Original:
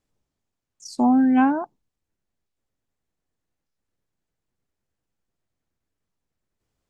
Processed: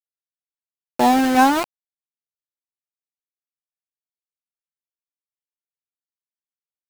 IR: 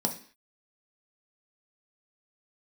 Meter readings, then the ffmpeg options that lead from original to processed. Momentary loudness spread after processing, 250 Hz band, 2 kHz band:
17 LU, -1.0 dB, +8.5 dB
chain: -af "lowshelf=f=290:t=q:w=1.5:g=-9,aeval=exprs='val(0)*gte(abs(val(0)),0.0562)':c=same,volume=7dB"

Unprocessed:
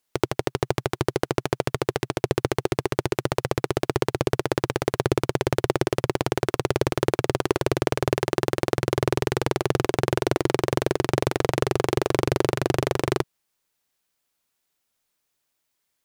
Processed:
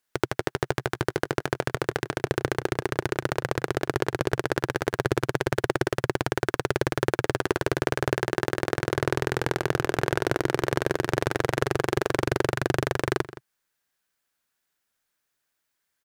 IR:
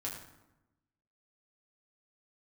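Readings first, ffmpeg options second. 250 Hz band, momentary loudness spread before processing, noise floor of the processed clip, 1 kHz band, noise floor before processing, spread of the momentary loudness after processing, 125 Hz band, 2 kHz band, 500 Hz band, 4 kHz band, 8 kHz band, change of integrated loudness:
-3.0 dB, 3 LU, -80 dBFS, -1.5 dB, -77 dBFS, 3 LU, -3.0 dB, +2.5 dB, -3.0 dB, -2.5 dB, -3.0 dB, -2.0 dB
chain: -filter_complex "[0:a]equalizer=f=1.6k:w=2.7:g=8,asplit=2[a][b];[b]adelay=169.1,volume=-16dB,highshelf=f=4k:g=-3.8[c];[a][c]amix=inputs=2:normalize=0,volume=-3dB"

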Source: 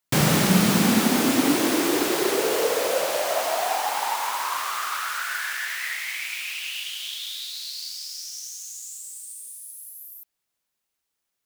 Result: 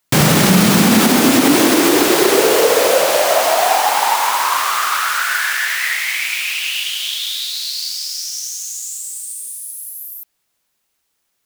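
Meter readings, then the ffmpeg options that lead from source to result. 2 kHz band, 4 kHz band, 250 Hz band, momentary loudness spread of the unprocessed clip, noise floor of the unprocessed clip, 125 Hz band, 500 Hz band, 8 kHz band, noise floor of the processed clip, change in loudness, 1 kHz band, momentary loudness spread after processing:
+10.5 dB, +10.0 dB, +8.5 dB, 17 LU, -81 dBFS, +7.5 dB, +10.0 dB, +10.0 dB, -70 dBFS, +9.5 dB, +10.5 dB, 14 LU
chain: -af "alimiter=level_in=12dB:limit=-1dB:release=50:level=0:latency=1,volume=-1dB"

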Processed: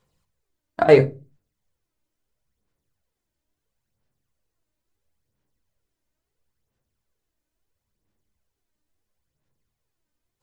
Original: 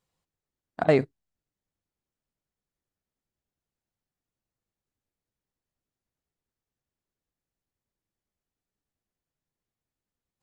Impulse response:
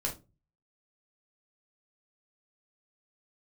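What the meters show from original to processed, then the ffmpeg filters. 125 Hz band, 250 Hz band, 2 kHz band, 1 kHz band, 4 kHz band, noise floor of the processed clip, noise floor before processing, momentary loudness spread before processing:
+7.5 dB, +4.0 dB, +6.5 dB, +7.5 dB, +7.0 dB, -83 dBFS, under -85 dBFS, 11 LU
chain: -filter_complex "[0:a]aphaser=in_gain=1:out_gain=1:delay=3.3:decay=0.51:speed=0.74:type=sinusoidal,asplit=2[a][b];[1:a]atrim=start_sample=2205,afade=t=out:st=0.38:d=0.01,atrim=end_sample=17199[c];[b][c]afir=irnorm=-1:irlink=0,volume=-7dB[d];[a][d]amix=inputs=2:normalize=0,volume=2.5dB"

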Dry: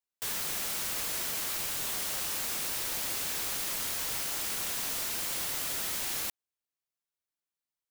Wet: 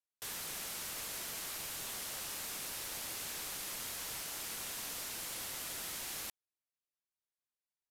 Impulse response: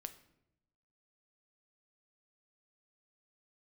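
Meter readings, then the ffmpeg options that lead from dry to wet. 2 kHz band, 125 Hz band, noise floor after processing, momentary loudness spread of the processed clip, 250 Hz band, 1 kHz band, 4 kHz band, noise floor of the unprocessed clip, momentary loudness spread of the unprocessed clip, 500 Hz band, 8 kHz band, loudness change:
-7.0 dB, -7.0 dB, under -85 dBFS, 0 LU, -7.0 dB, -7.0 dB, -7.0 dB, under -85 dBFS, 0 LU, -7.0 dB, -7.0 dB, -9.0 dB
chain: -af "aresample=32000,aresample=44100,volume=-7dB"

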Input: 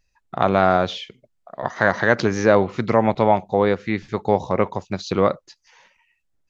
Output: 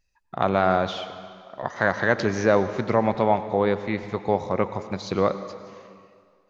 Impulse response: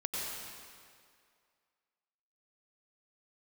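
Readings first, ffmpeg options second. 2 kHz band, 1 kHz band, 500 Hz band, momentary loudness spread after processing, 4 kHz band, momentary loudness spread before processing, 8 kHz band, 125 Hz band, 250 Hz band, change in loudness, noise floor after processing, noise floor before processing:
-3.5 dB, -3.5 dB, -3.5 dB, 15 LU, -3.5 dB, 13 LU, n/a, -4.0 dB, -4.0 dB, -4.0 dB, -65 dBFS, -70 dBFS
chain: -filter_complex "[0:a]asplit=2[a][b];[1:a]atrim=start_sample=2205[c];[b][c]afir=irnorm=-1:irlink=0,volume=-12.5dB[d];[a][d]amix=inputs=2:normalize=0,volume=-5.5dB"

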